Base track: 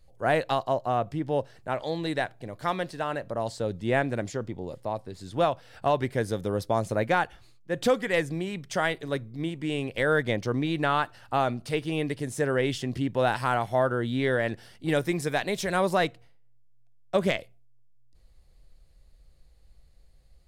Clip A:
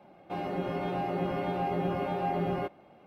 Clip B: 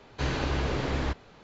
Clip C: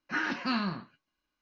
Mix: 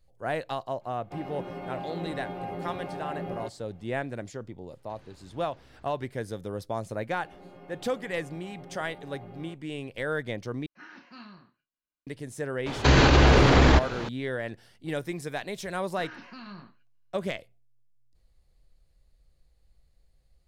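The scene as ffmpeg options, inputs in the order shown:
-filter_complex "[1:a]asplit=2[a][b];[2:a]asplit=2[c][d];[3:a]asplit=2[e][f];[0:a]volume=-6.5dB[g];[c]acompressor=threshold=-36dB:ratio=6:attack=3.2:release=140:knee=1:detection=peak[h];[e]asplit=2[i][j];[j]adelay=33,volume=-8.5dB[k];[i][k]amix=inputs=2:normalize=0[l];[d]alimiter=level_in=26dB:limit=-1dB:release=50:level=0:latency=1[m];[f]alimiter=level_in=2.5dB:limit=-24dB:level=0:latency=1:release=15,volume=-2.5dB[n];[g]asplit=2[o][p];[o]atrim=end=10.664[q];[l]atrim=end=1.41,asetpts=PTS-STARTPTS,volume=-17.5dB[r];[p]atrim=start=12.066[s];[a]atrim=end=3.06,asetpts=PTS-STARTPTS,volume=-5.5dB,afade=t=in:d=0.004:c=hsin,afade=t=out:st=3.056:d=0.004:c=hsin,adelay=810[t];[h]atrim=end=1.43,asetpts=PTS-STARTPTS,volume=-18dB,afade=t=in:d=0.1,afade=t=out:st=1.33:d=0.1,adelay=4710[u];[b]atrim=end=3.06,asetpts=PTS-STARTPTS,volume=-16.5dB,afade=t=in:d=0.004:c=hsin,afade=t=out:st=3.056:d=0.004:c=hsin,adelay=6870[v];[m]atrim=end=1.43,asetpts=PTS-STARTPTS,volume=-8dB,afade=t=in:d=0.004:c=hsin,afade=t=out:st=1.426:d=0.004:c=hsin,adelay=12660[w];[n]atrim=end=1.41,asetpts=PTS-STARTPTS,volume=-9.5dB,afade=t=in:d=0.004:c=hsin,afade=t=out:st=1.406:d=0.004:c=hsin,adelay=15870[x];[q][r]acrossfade=d=0.004:c1=hsin:c2=hsin[y];[y][s]acrossfade=d=0.004:c1=hsin:c2=hsin[z];[z][t][u][v][w][x]amix=inputs=6:normalize=0"

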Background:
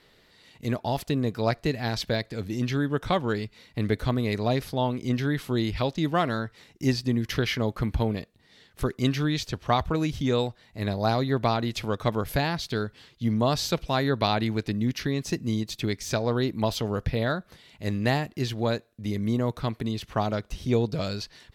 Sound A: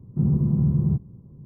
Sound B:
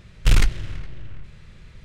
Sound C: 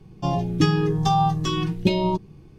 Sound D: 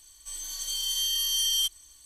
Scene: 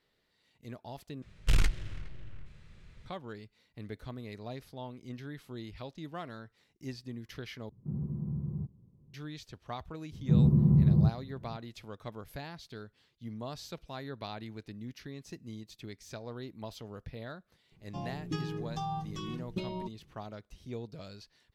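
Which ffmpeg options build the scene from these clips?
-filter_complex "[1:a]asplit=2[a][b];[0:a]volume=-17dB,asplit=3[c][d][e];[c]atrim=end=1.224[f];[2:a]atrim=end=1.84,asetpts=PTS-STARTPTS,volume=-9.5dB[g];[d]atrim=start=3.056:end=7.694[h];[a]atrim=end=1.45,asetpts=PTS-STARTPTS,volume=-15dB[i];[e]atrim=start=9.136[j];[b]atrim=end=1.45,asetpts=PTS-STARTPTS,volume=-2dB,afade=t=in:d=0.004:c=hsin,afade=t=out:st=1.446:d=0.004:c=hsin,adelay=10120[k];[3:a]atrim=end=2.58,asetpts=PTS-STARTPTS,volume=-16.5dB,afade=t=in:d=0.004:c=hsin,afade=t=out:st=2.576:d=0.004:c=hsin,adelay=17710[l];[f][g]acrossfade=d=0.004:c1=hsin:c2=hsin[m];[m][h]acrossfade=d=0.004:c1=hsin:c2=hsin[n];[n][i]acrossfade=d=0.004:c1=hsin:c2=hsin[o];[o][j]acrossfade=d=0.004:c1=hsin:c2=hsin[p];[p][k][l]amix=inputs=3:normalize=0"

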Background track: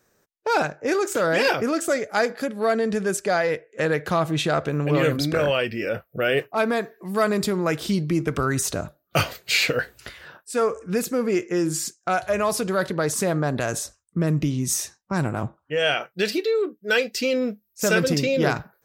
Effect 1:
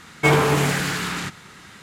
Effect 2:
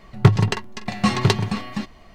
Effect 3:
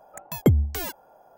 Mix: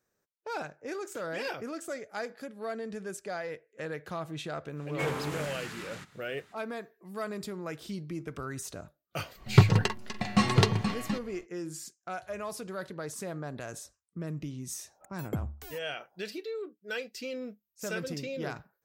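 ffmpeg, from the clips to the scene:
-filter_complex "[0:a]volume=-15dB[a];[1:a]atrim=end=1.82,asetpts=PTS-STARTPTS,volume=-17dB,afade=t=in:d=0.05,afade=t=out:st=1.77:d=0.05,adelay=4750[b];[2:a]atrim=end=2.14,asetpts=PTS-STARTPTS,volume=-5dB,afade=t=in:d=0.1,afade=t=out:st=2.04:d=0.1,adelay=9330[c];[3:a]atrim=end=1.37,asetpts=PTS-STARTPTS,volume=-15.5dB,afade=t=in:d=0.004:c=hsin,afade=t=out:st=1.366:d=0.004:c=hsin,adelay=14870[d];[a][b][c][d]amix=inputs=4:normalize=0"

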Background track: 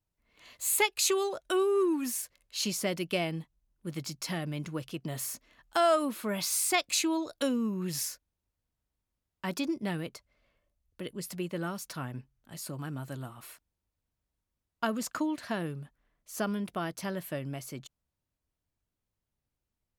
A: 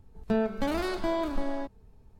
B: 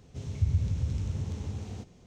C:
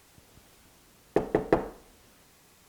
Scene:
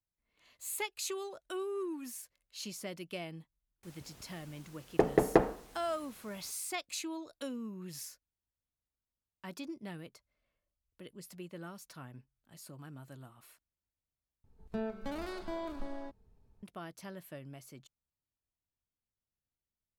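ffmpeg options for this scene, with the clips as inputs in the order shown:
-filter_complex "[0:a]volume=-11dB,asplit=2[a][b];[a]atrim=end=14.444[c];[1:a]atrim=end=2.19,asetpts=PTS-STARTPTS,volume=-10.5dB[d];[b]atrim=start=16.626[e];[3:a]atrim=end=2.68,asetpts=PTS-STARTPTS,volume=-0.5dB,afade=t=in:d=0.004:c=hsin,afade=t=out:st=2.676:d=0.004:c=hsin,adelay=3830[f];[c][d]acrossfade=d=0.004:c1=hsin:c2=hsin[g];[g][e]acrossfade=d=0.004:c1=hsin:c2=hsin[h];[h][f]amix=inputs=2:normalize=0"

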